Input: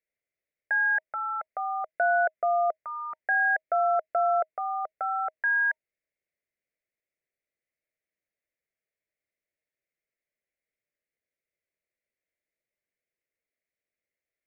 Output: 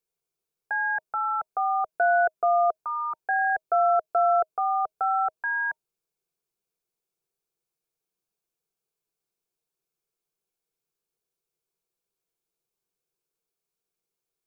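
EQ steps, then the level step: fixed phaser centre 390 Hz, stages 8; +7.5 dB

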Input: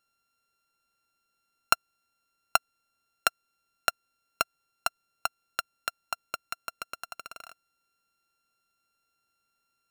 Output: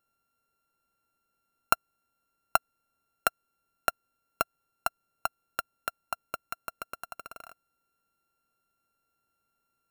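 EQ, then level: bell 4500 Hz -12 dB 2.5 oct; +3.5 dB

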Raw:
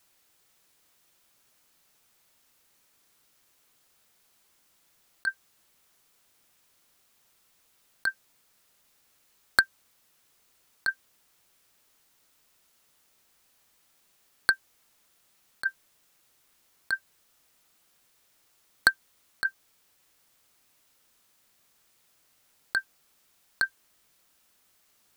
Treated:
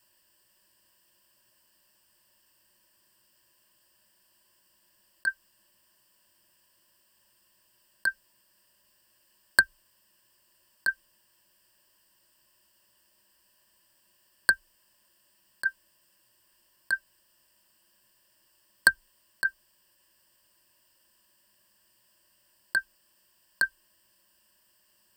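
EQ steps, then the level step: ripple EQ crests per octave 1.3, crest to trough 14 dB; -2.5 dB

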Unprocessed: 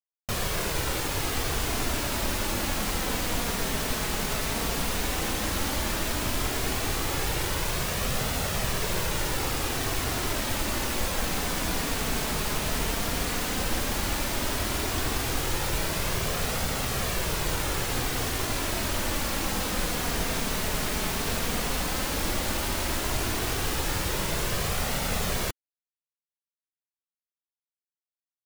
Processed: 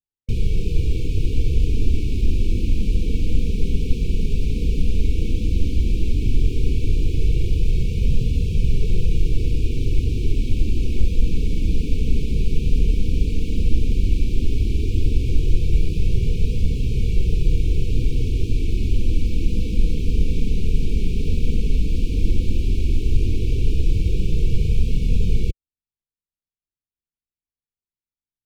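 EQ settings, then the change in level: brick-wall FIR band-stop 510–2200 Hz; RIAA curve playback; high shelf 8600 Hz -6 dB; -2.0 dB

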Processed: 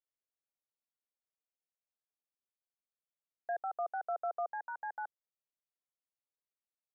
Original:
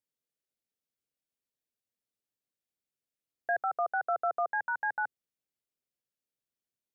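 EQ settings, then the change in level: band-pass 710 Hz, Q 1.4; -5.0 dB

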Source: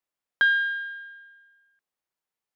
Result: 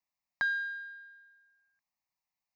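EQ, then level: fixed phaser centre 2200 Hz, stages 8; 0.0 dB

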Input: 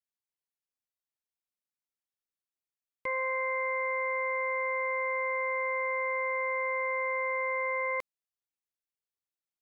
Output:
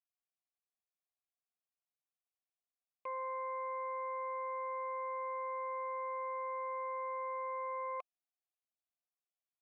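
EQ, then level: vowel filter a; +4.0 dB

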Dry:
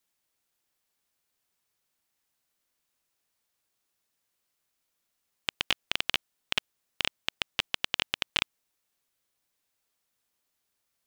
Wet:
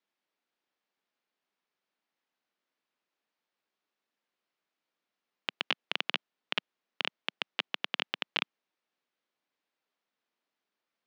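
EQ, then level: HPF 190 Hz 24 dB/oct; air absorption 210 m; 0.0 dB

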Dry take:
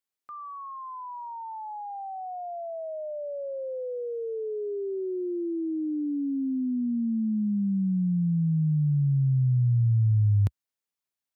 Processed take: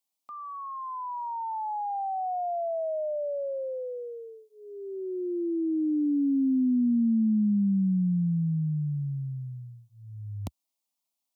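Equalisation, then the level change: low shelf 160 Hz -7 dB; fixed phaser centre 430 Hz, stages 6; +6.0 dB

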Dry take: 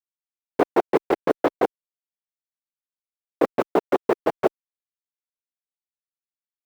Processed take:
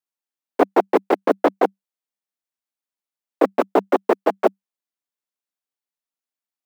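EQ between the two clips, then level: rippled Chebyshev high-pass 190 Hz, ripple 3 dB; +5.0 dB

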